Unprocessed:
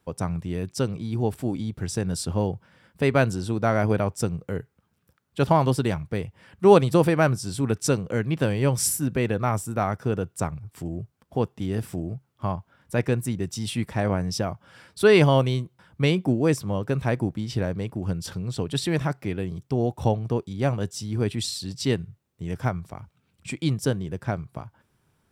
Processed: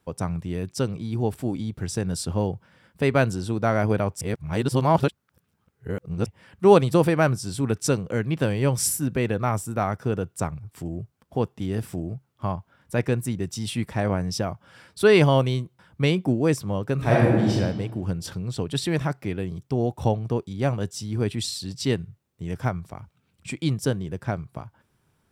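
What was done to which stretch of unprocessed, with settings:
0:04.21–0:06.26: reverse
0:16.95–0:17.51: thrown reverb, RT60 1.4 s, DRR −6.5 dB

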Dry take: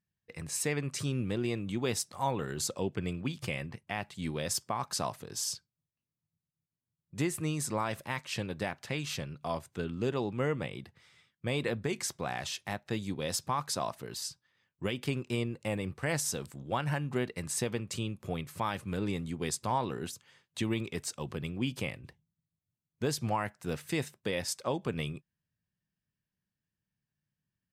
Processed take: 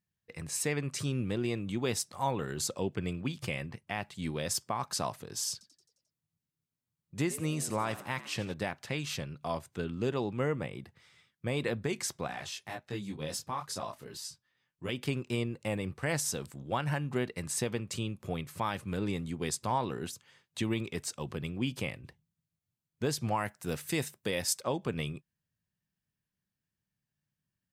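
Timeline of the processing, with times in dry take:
0:05.52–0:08.54: echo with shifted repeats 88 ms, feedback 59%, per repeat +83 Hz, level −16.5 dB
0:10.43–0:11.57: dynamic equaliser 3,600 Hz, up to −6 dB, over −56 dBFS, Q 1.3
0:12.27–0:14.89: micro pitch shift up and down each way 12 cents
0:23.36–0:24.61: high-shelf EQ 7,000 Hz +9.5 dB

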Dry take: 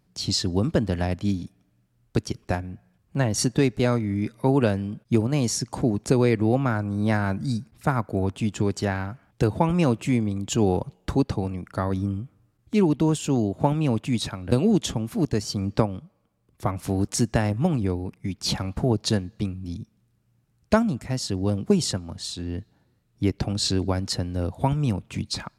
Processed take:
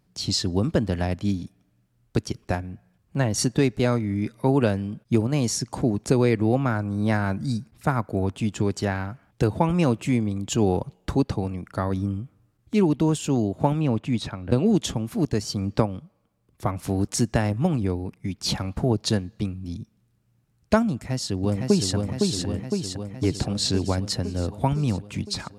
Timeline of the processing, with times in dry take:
0:13.81–0:14.66: low-pass filter 3,100 Hz 6 dB per octave
0:20.92–0:21.94: delay throw 510 ms, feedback 70%, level −3.5 dB

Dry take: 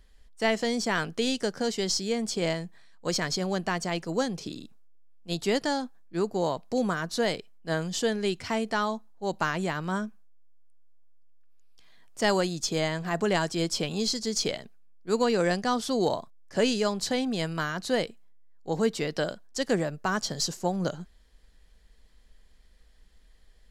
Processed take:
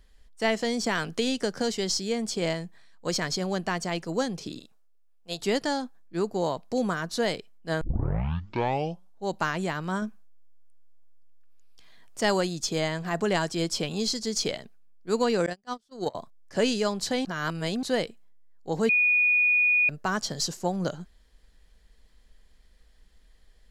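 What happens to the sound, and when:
0:00.84–0:01.78: multiband upward and downward compressor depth 70%
0:04.59–0:05.40: low shelf with overshoot 400 Hz −7.5 dB, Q 1.5
0:07.81: tape start 1.44 s
0:10.02–0:12.20: clip gain +3 dB
0:15.46–0:16.15: noise gate −24 dBFS, range −37 dB
0:17.25–0:17.83: reverse
0:18.89–0:19.89: beep over 2,460 Hz −18.5 dBFS

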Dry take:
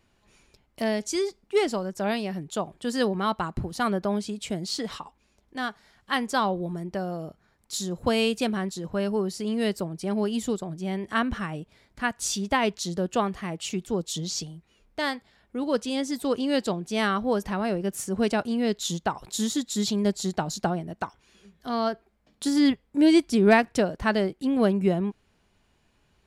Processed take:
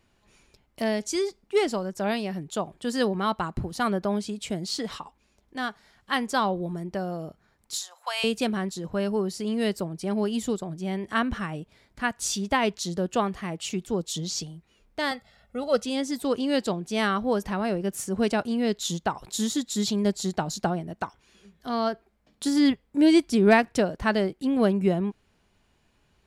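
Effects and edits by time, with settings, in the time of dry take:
0:07.76–0:08.24: Butterworth high-pass 750 Hz
0:15.11–0:15.84: comb filter 1.5 ms, depth 91%

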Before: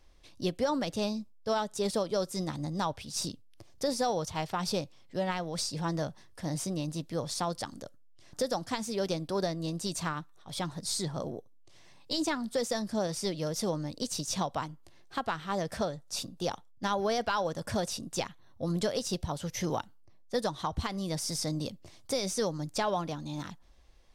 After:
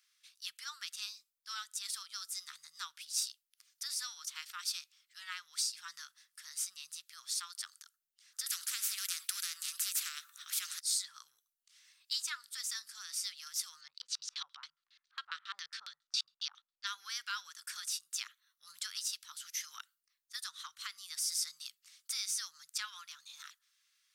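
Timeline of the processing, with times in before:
0:08.46–0:10.80: every bin compressed towards the loudest bin 4 to 1
0:13.81–0:16.87: auto-filter low-pass square 7.3 Hz 680–4,200 Hz
whole clip: elliptic high-pass filter 1,300 Hz, stop band 50 dB; high-shelf EQ 6,100 Hz +11.5 dB; level −5 dB

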